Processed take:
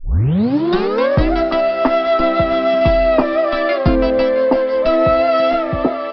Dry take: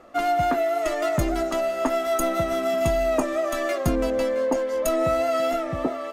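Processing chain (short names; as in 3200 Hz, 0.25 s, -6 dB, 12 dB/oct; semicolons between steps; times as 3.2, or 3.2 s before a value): tape start at the beginning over 1.31 s; downsampling 11025 Hz; gain +9 dB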